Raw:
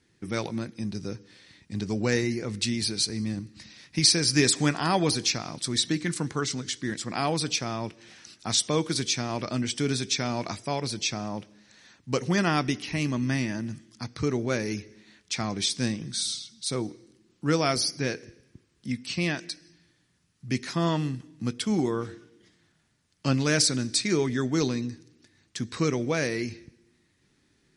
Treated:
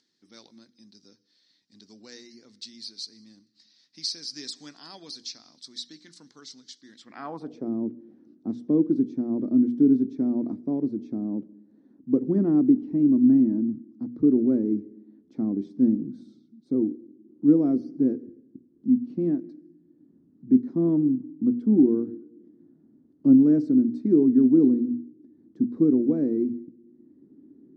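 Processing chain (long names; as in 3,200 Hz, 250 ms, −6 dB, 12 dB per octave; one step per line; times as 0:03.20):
mains-hum notches 60/120/180/240 Hz
upward compression, threshold −47 dBFS
graphic EQ with 15 bands 100 Hz −4 dB, 250 Hz +11 dB, 2,500 Hz −8 dB, 10,000 Hz −7 dB
band-pass filter sweep 4,500 Hz → 310 Hz, 0:06.91–0:07.71
tilt shelving filter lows +7 dB, about 760 Hz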